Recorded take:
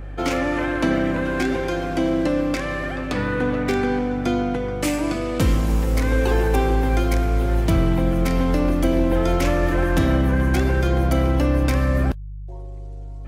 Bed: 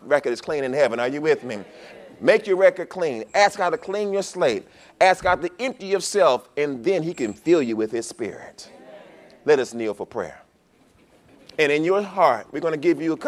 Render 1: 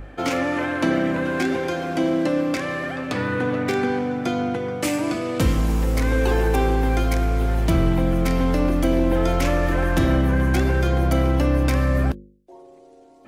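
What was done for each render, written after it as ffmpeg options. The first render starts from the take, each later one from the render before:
-af "bandreject=f=50:t=h:w=4,bandreject=f=100:t=h:w=4,bandreject=f=150:t=h:w=4,bandreject=f=200:t=h:w=4,bandreject=f=250:t=h:w=4,bandreject=f=300:t=h:w=4,bandreject=f=350:t=h:w=4,bandreject=f=400:t=h:w=4,bandreject=f=450:t=h:w=4,bandreject=f=500:t=h:w=4,bandreject=f=550:t=h:w=4"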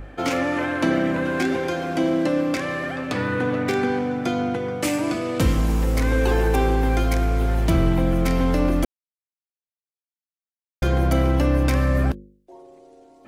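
-filter_complex "[0:a]asplit=3[a][b][c];[a]atrim=end=8.85,asetpts=PTS-STARTPTS,afade=t=out:st=8.846:d=0.004:c=hsin[d];[b]atrim=start=8.85:end=10.82,asetpts=PTS-STARTPTS,volume=0[e];[c]atrim=start=10.82,asetpts=PTS-STARTPTS,afade=t=in:d=0.004:c=hsin[f];[d][e][f]concat=n=3:v=0:a=1"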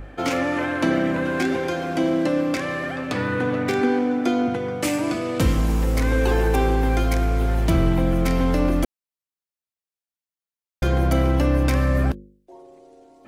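-filter_complex "[0:a]asettb=1/sr,asplit=3[a][b][c];[a]atrim=end=3.814[d];[b]atrim=start=3.81:end=4.48,asetpts=PTS-STARTPTS,afade=t=in:d=0.004:c=qsin,afade=t=out:st=0.666:d=0.004:c=qsin,lowshelf=f=210:t=q:w=3:g=-7.5[e];[c]atrim=start=4.476[f];[d][e]acrossfade=d=0.004:c1=hsin:c2=qsin[g];[g][f]acrossfade=d=0.004:c1=qsin:c2=hsin"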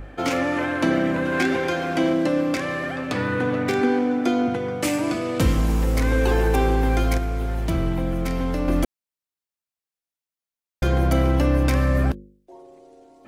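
-filter_complex "[0:a]asettb=1/sr,asplit=3[a][b][c];[a]atrim=end=1.324[d];[b]atrim=start=1.32:end=2.13,asetpts=PTS-STARTPTS,afade=t=in:d=0.004:c=qsin,afade=t=out:st=0.806:d=0.004:c=qsin,equalizer=f=2k:t=o:w=2.2:g=4[e];[c]atrim=start=2.126[f];[d][e]acrossfade=d=0.004:c1=hsin:c2=qsin[g];[g][f]acrossfade=d=0.004:c1=qsin:c2=hsin,asplit=3[h][i][j];[h]atrim=end=7.182[k];[i]atrim=start=7.178:end=8.682,asetpts=PTS-STARTPTS,volume=-4.5dB[l];[j]atrim=start=8.678[m];[k][l]acrossfade=d=0.004:c1=hsin:c2=hsin[n];[n][m]acrossfade=d=0.004:c1=hsin:c2=hsin"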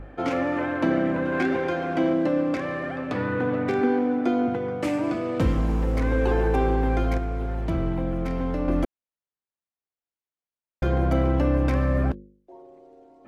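-af "lowpass=f=1.2k:p=1,lowshelf=f=250:g=-3.5"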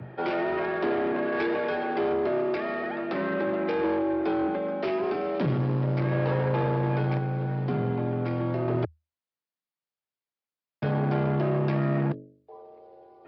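-af "aresample=11025,asoftclip=type=tanh:threshold=-21.5dB,aresample=44100,afreqshift=78"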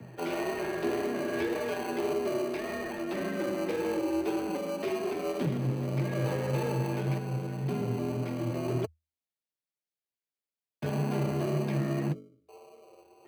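-filter_complex "[0:a]flanger=delay=4.2:depth=8.1:regen=34:speed=1.8:shape=sinusoidal,acrossover=split=100|650|1300[a][b][c][d];[c]acrusher=samples=25:mix=1:aa=0.000001[e];[a][b][e][d]amix=inputs=4:normalize=0"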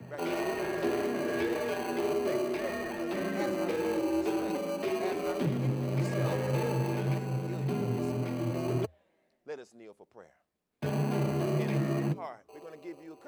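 -filter_complex "[1:a]volume=-24.5dB[a];[0:a][a]amix=inputs=2:normalize=0"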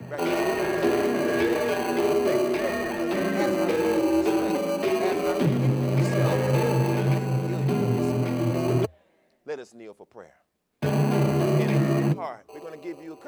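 -af "volume=7.5dB"

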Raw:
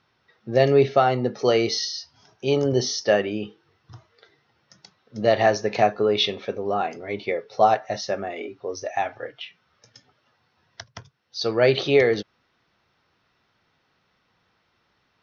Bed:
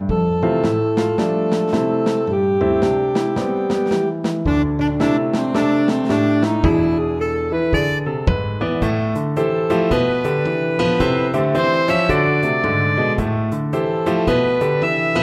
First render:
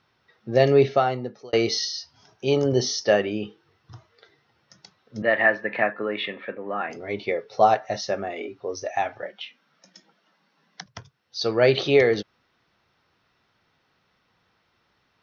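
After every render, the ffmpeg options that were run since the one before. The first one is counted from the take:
-filter_complex "[0:a]asettb=1/sr,asplit=3[a][b][c];[a]atrim=end=5.224[d];[b]atrim=start=5.22:end=6.9,asetpts=PTS-STARTPTS,afade=t=in:d=0.004:c=qsin,afade=t=out:st=1.676:d=0.004:c=qsin,highpass=f=170:w=0.5412,highpass=f=170:w=1.3066,equalizer=f=210:t=q:w=4:g=-4,equalizer=f=410:t=q:w=4:g=-10,equalizer=f=740:t=q:w=4:g=-8,equalizer=f=1.8k:t=q:w=4:g=10,lowpass=f=2.6k:w=0.5412,lowpass=f=2.6k:w=1.3066[e];[c]atrim=start=6.896[f];[d][e]acrossfade=d=0.004:c1=hsin:c2=qsin[g];[g][f]acrossfade=d=0.004:c1=qsin:c2=hsin,asettb=1/sr,asplit=3[h][i][j];[h]atrim=end=9.224[k];[i]atrim=start=9.22:end=10.86,asetpts=PTS-STARTPTS,afade=t=in:d=0.004:c=qsin,afade=t=out:st=1.636:d=0.004:c=qsin,afreqshift=71[l];[j]atrim=start=10.856[m];[k][l]acrossfade=d=0.004:c1=hsin:c2=qsin[n];[n][m]acrossfade=d=0.004:c1=qsin:c2=hsin,asplit=2[o][p];[o]atrim=end=1.53,asetpts=PTS-STARTPTS,afade=t=out:st=0.84:d=0.69[q];[p]atrim=start=1.53,asetpts=PTS-STARTPTS,afade=t=in:d=0.004:c=hsin[r];[q][r]concat=n=2:v=0:a=1"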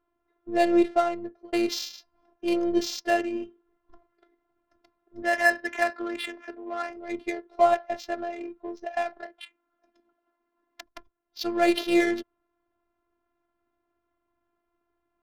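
-af "afftfilt=real='hypot(re,im)*cos(PI*b)':imag='0':win_size=512:overlap=0.75,adynamicsmooth=sensitivity=5:basefreq=980"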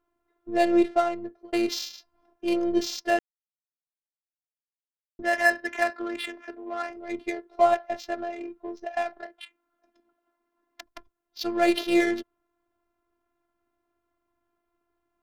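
-filter_complex "[0:a]asplit=3[a][b][c];[a]atrim=end=3.19,asetpts=PTS-STARTPTS,afade=t=out:st=3.186:d=0.004:c=hsin[d];[b]atrim=start=3.19:end=5.19,asetpts=PTS-STARTPTS,volume=0[e];[c]atrim=start=5.19,asetpts=PTS-STARTPTS,afade=t=in:d=0.004:c=hsin[f];[d][e][f]concat=n=3:v=0:a=1"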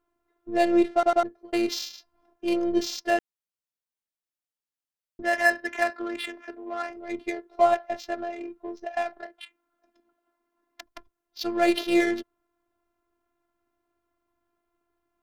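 -filter_complex "[0:a]asplit=4[a][b][c][d];[a]atrim=end=1.032[e];[b]atrim=start=0.928:end=1.032[f];[c]atrim=start=0.928:end=1.032[g];[d]atrim=start=1.228[h];[e][f]acrossfade=d=0.004:c1=hsin:c2=hsin[i];[i][g]acrossfade=d=0.004:c1=hsin:c2=hsin[j];[j][h]acrossfade=d=0.004:c1=hsin:c2=hsin"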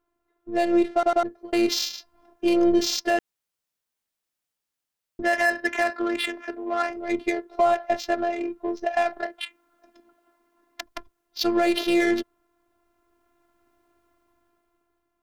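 -af "dynaudnorm=f=320:g=7:m=11.5dB,alimiter=limit=-11dB:level=0:latency=1:release=96"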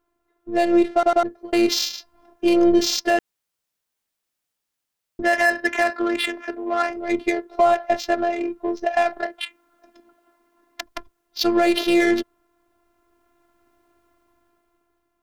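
-af "volume=3.5dB"

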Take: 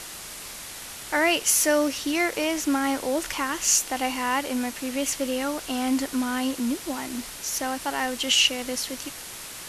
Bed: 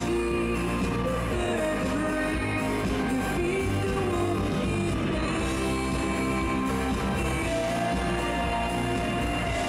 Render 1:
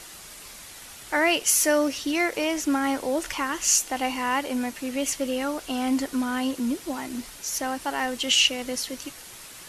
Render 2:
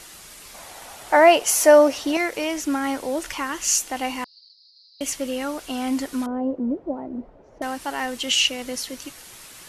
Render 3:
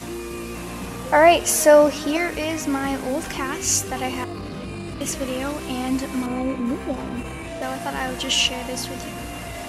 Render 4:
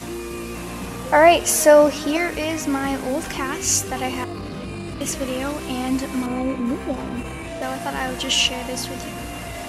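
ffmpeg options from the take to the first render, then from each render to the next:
-af "afftdn=nr=6:nf=-39"
-filter_complex "[0:a]asettb=1/sr,asplit=3[a][b][c];[a]atrim=end=0.544[d];[b]atrim=start=0.54:end=2.17,asetpts=PTS-STARTPTS,afade=t=in:d=0.004:c=qsin,afade=t=out:st=1.626:d=0.004:c=qsin,equalizer=f=730:t=o:w=1.4:g=13.5[e];[c]atrim=start=2.166[f];[d][e]acrossfade=d=0.004:c1=hsin:c2=qsin[g];[g][f]acrossfade=d=0.004:c1=qsin:c2=hsin,asettb=1/sr,asplit=3[h][i][j];[h]atrim=end=4.244[k];[i]atrim=start=4.24:end=5.01,asetpts=PTS-STARTPTS,afade=t=in:d=0.004:c=qsin,afade=t=out:st=0.766:d=0.004:c=qsin,asuperpass=centerf=4500:order=8:qfactor=4.1[l];[j]atrim=start=5.006[m];[k][l]acrossfade=d=0.004:c1=hsin:c2=qsin[n];[n][m]acrossfade=d=0.004:c1=qsin:c2=hsin,asettb=1/sr,asplit=3[o][p][q];[o]atrim=end=6.264[r];[p]atrim=start=6.26:end=7.62,asetpts=PTS-STARTPTS,afade=t=in:d=0.004:c=qsin,afade=t=out:st=1.356:d=0.004:c=qsin,lowpass=f=590:t=q:w=2.2[s];[q]atrim=start=7.616[t];[r][s]acrossfade=d=0.004:c1=hsin:c2=qsin[u];[u][t]acrossfade=d=0.004:c1=qsin:c2=hsin"
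-filter_complex "[1:a]volume=-5.5dB[a];[0:a][a]amix=inputs=2:normalize=0"
-af "volume=1dB,alimiter=limit=-3dB:level=0:latency=1"

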